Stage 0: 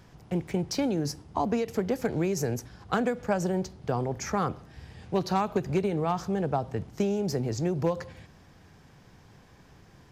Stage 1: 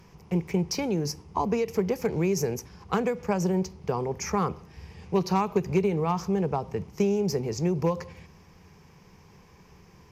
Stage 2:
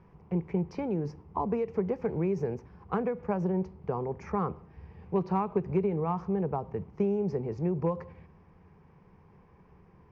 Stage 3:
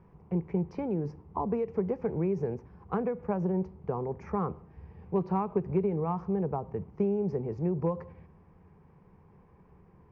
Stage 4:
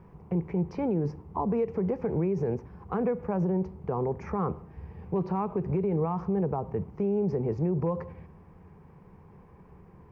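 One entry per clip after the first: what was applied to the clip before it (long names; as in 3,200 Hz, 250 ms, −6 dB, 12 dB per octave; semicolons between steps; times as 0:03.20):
EQ curve with evenly spaced ripples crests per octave 0.8, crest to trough 8 dB
low-pass filter 1,500 Hz 12 dB per octave; level −3.5 dB
high-shelf EQ 2,100 Hz −8.5 dB
brickwall limiter −25.5 dBFS, peak gain reduction 9.5 dB; level +5.5 dB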